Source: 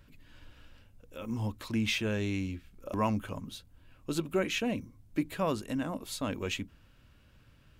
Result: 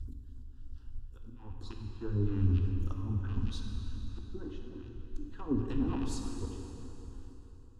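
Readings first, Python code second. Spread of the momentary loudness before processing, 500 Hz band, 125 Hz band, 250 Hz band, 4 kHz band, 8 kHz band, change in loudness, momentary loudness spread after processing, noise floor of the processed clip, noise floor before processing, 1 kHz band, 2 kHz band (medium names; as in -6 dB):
14 LU, -9.5 dB, +4.0 dB, -3.5 dB, -13.5 dB, -9.0 dB, -2.5 dB, 20 LU, -50 dBFS, -61 dBFS, -12.0 dB, -18.0 dB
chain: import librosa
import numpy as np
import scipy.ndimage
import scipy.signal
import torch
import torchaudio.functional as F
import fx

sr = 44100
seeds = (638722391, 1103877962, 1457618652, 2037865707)

y = fx.rattle_buzz(x, sr, strikes_db=-47.0, level_db=-28.0)
y = scipy.signal.sosfilt(scipy.signal.butter(2, 11000.0, 'lowpass', fs=sr, output='sos'), y)
y = fx.env_lowpass_down(y, sr, base_hz=840.0, full_db=-26.5)
y = fx.low_shelf(y, sr, hz=350.0, db=6.5)
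y = fx.hpss(y, sr, part='percussive', gain_db=8)
y = fx.bass_treble(y, sr, bass_db=14, treble_db=0)
y = fx.auto_swell(y, sr, attack_ms=755.0)
y = fx.phaser_stages(y, sr, stages=2, low_hz=100.0, high_hz=2400.0, hz=3.3, feedback_pct=45)
y = fx.fixed_phaser(y, sr, hz=600.0, stages=6)
y = fx.rev_plate(y, sr, seeds[0], rt60_s=3.6, hf_ratio=0.8, predelay_ms=0, drr_db=1.0)
y = y * 10.0 ** (-5.5 / 20.0)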